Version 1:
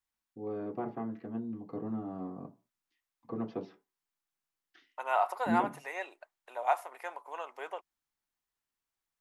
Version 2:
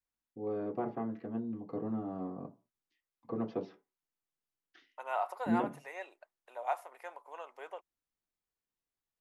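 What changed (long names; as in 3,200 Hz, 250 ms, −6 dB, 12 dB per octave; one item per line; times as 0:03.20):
second voice −6.5 dB
master: add parametric band 530 Hz +3.5 dB 0.58 octaves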